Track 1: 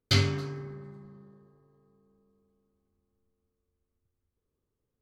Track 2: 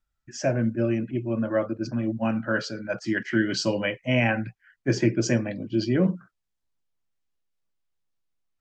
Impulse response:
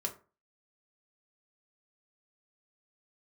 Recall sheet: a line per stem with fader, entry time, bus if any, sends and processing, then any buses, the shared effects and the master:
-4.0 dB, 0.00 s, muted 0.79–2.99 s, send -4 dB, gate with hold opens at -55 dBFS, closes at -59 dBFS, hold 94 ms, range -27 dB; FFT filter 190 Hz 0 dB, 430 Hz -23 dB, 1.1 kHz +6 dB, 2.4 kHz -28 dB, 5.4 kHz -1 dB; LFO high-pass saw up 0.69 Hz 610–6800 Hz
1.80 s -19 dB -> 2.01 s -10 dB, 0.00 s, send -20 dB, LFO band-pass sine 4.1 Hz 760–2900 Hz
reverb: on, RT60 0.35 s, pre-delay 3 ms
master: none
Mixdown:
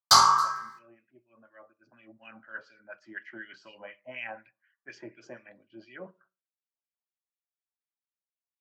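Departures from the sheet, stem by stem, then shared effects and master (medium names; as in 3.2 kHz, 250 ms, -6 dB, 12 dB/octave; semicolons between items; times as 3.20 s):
stem 1 -4.0 dB -> +7.5 dB; reverb return +8.0 dB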